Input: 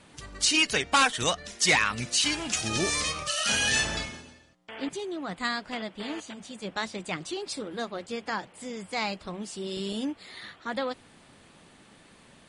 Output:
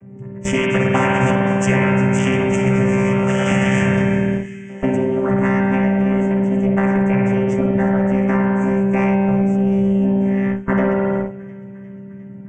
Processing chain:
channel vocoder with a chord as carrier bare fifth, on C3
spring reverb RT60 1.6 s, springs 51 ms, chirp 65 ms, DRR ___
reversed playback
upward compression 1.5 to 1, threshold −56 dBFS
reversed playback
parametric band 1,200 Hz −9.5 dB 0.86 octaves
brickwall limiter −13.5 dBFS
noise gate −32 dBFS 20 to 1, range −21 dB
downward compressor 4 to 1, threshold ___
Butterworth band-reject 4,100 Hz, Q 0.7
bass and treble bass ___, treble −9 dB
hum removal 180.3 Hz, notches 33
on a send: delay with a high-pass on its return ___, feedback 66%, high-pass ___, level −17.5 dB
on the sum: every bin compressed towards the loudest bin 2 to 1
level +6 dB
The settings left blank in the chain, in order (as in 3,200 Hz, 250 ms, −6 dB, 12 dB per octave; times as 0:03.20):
−1.5 dB, −26 dBFS, +15 dB, 354 ms, 2,300 Hz